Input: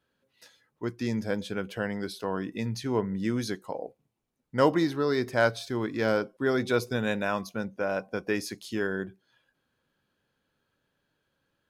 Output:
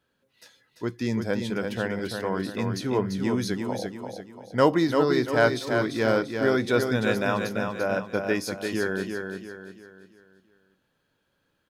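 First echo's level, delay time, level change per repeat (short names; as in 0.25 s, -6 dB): -5.5 dB, 0.342 s, -8.0 dB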